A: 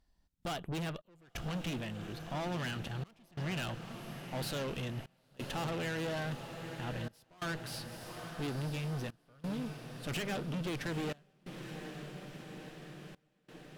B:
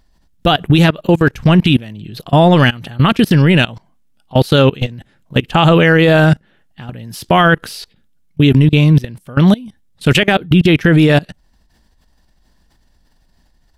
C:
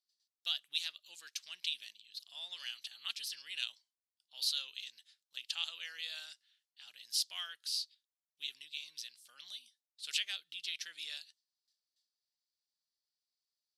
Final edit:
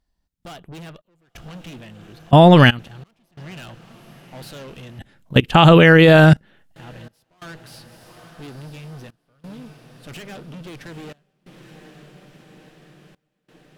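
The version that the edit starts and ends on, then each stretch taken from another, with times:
A
2.31–2.79 s: from B
4.99–6.76 s: from B
not used: C

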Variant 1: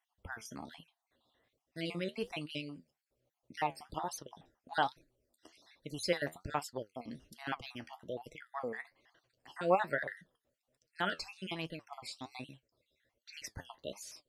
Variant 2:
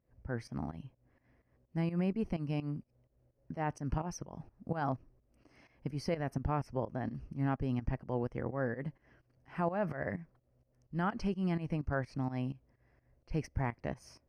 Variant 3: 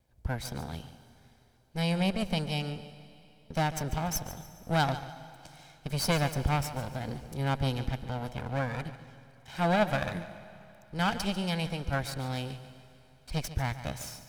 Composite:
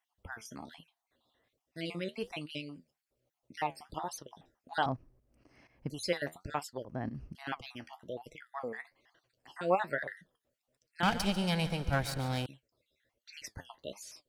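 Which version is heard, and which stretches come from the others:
1
4.86–5.90 s: from 2
6.85–7.35 s: from 2
11.03–12.46 s: from 3

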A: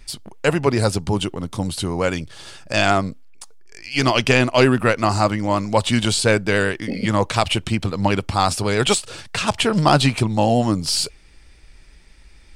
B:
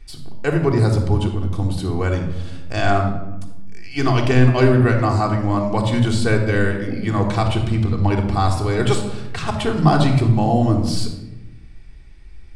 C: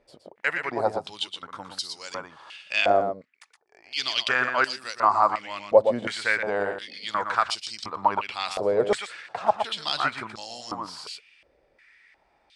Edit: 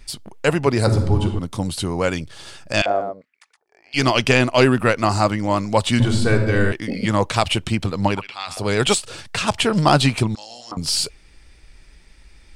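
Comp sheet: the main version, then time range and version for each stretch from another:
A
0.87–1.39 s: from B
2.82–3.94 s: from C
6.00–6.72 s: from B
8.18–8.58 s: from C, crossfade 0.24 s
10.35–10.77 s: from C

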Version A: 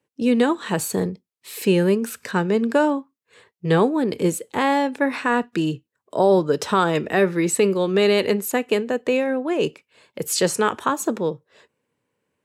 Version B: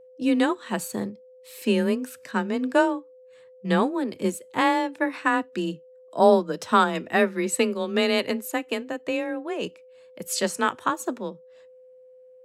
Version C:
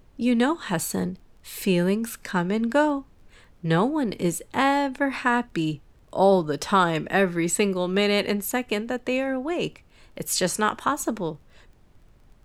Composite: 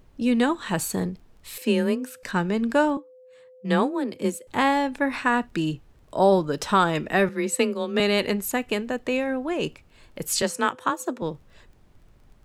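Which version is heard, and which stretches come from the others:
C
1.58–2.23 s: from B
2.97–4.47 s: from B
7.29–8.00 s: from B
10.42–11.22 s: from B
not used: A

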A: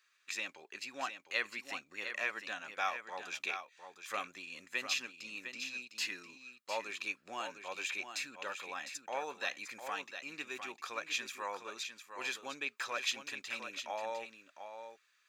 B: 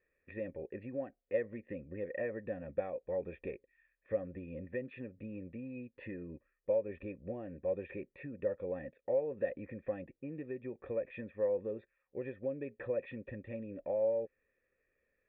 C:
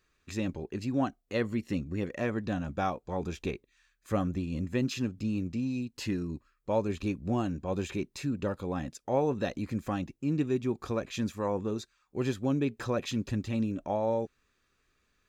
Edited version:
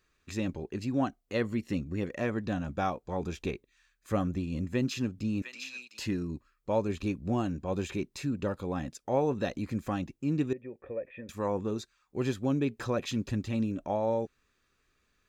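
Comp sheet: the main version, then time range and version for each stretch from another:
C
5.42–5.99 s: from A
10.53–11.29 s: from B

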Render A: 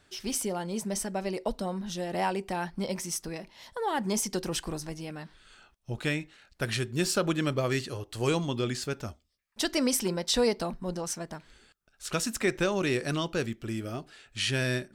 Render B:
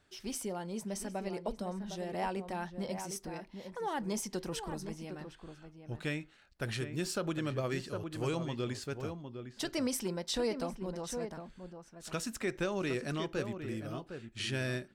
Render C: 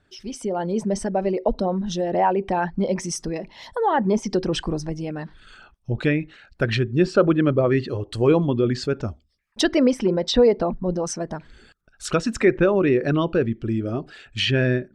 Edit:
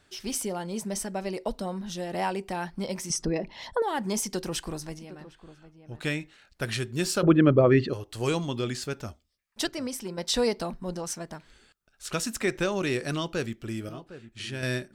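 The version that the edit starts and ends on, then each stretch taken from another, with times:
A
3.10–3.82 s: from C
4.99–6.01 s: from B
7.23–7.93 s: from C
9.67–10.18 s: from B
13.89–14.63 s: from B

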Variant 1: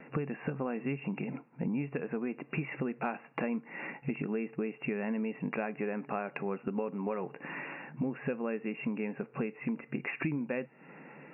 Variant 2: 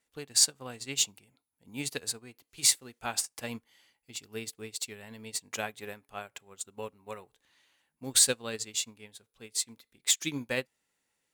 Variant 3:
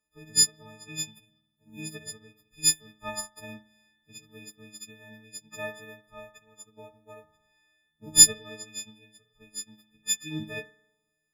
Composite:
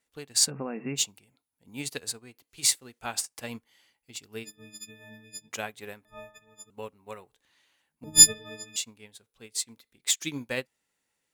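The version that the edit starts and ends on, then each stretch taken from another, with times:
2
0.49–0.97 s: from 1, crossfade 0.06 s
4.45–5.49 s: from 3, crossfade 0.06 s
6.05–6.70 s: from 3
8.04–8.76 s: from 3

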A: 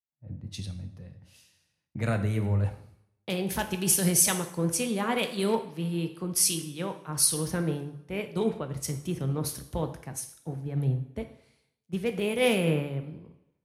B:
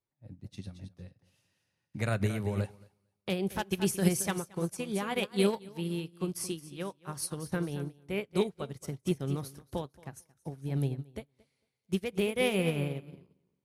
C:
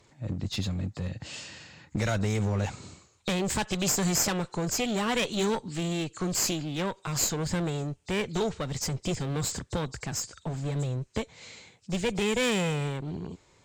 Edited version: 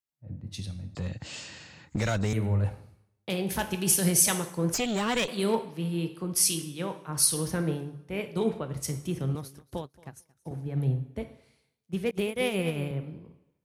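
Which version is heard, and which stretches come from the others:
A
0.95–2.33 s: from C
4.74–5.28 s: from C
9.35–10.51 s: from B
12.11–12.91 s: from B

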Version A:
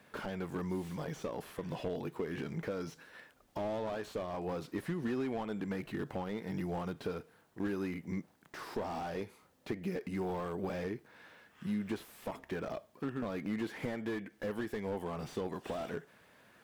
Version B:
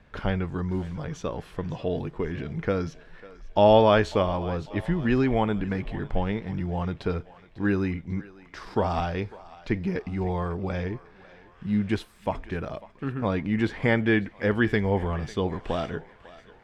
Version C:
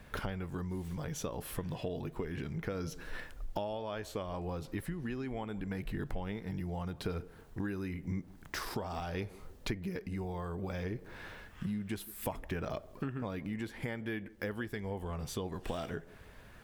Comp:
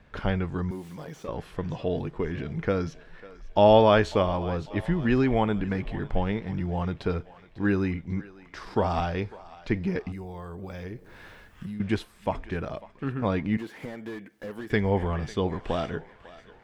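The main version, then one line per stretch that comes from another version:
B
0.71–1.28 s: from A
10.12–11.80 s: from C
13.57–14.70 s: from A

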